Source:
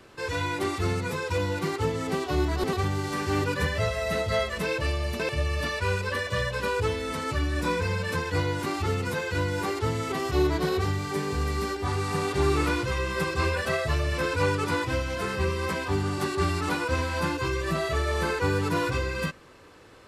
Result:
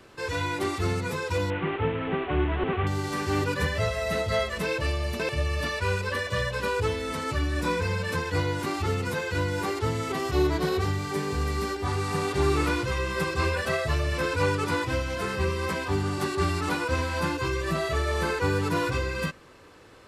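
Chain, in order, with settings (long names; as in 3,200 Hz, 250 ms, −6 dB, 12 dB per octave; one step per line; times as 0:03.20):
0:01.50–0:02.87: linear delta modulator 16 kbit/s, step −30 dBFS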